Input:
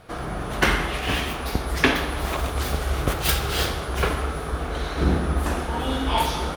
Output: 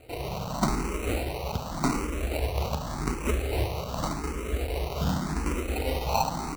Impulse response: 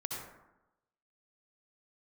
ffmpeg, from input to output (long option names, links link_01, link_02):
-filter_complex "[0:a]asplit=2[link_01][link_02];[link_02]alimiter=limit=-15dB:level=0:latency=1:release=459,volume=-3dB[link_03];[link_01][link_03]amix=inputs=2:normalize=0,acrusher=samples=26:mix=1:aa=0.000001,asplit=2[link_04][link_05];[link_05]afreqshift=0.87[link_06];[link_04][link_06]amix=inputs=2:normalize=1,volume=-5dB"